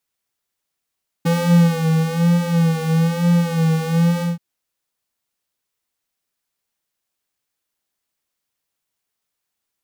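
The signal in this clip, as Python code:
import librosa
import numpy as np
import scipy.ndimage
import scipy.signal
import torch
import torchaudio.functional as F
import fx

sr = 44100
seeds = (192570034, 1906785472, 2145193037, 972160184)

y = fx.sub_patch_vibrato(sr, seeds[0], note=52, wave='triangle', wave2='square', interval_st=0, detune_cents=30, level2_db=-7.5, sub_db=-27.0, noise_db=-27.5, kind='highpass', cutoff_hz=210.0, q=2.9, env_oct=0.5, env_decay_s=0.27, env_sustain_pct=15, attack_ms=15.0, decay_s=0.63, sustain_db=-5.0, release_s=0.16, note_s=2.97, lfo_hz=1.1, vibrato_cents=64)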